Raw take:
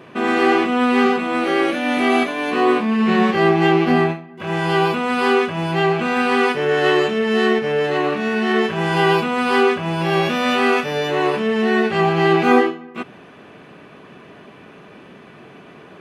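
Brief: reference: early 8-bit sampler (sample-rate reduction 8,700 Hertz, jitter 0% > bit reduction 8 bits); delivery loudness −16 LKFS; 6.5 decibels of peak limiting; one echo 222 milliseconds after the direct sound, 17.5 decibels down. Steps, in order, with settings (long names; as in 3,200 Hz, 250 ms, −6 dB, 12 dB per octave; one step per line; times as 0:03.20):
brickwall limiter −8 dBFS
single-tap delay 222 ms −17.5 dB
sample-rate reduction 8,700 Hz, jitter 0%
bit reduction 8 bits
level +2.5 dB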